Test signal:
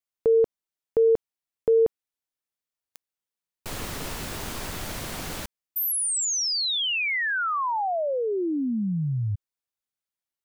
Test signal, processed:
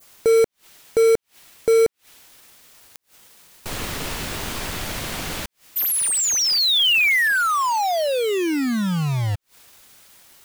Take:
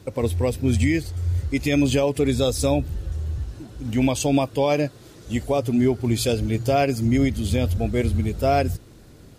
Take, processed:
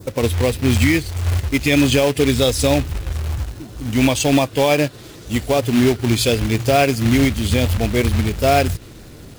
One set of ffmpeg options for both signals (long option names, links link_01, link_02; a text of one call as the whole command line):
ffmpeg -i in.wav -af "acrusher=bits=3:mode=log:mix=0:aa=0.000001,acompressor=mode=upward:threshold=-35dB:ratio=4:attack=0.28:release=103:knee=2.83:detection=peak,adynamicequalizer=threshold=0.00891:dfrequency=2700:dqfactor=0.82:tfrequency=2700:tqfactor=0.82:attack=5:release=100:ratio=0.375:range=2.5:mode=boostabove:tftype=bell,volume=4dB" out.wav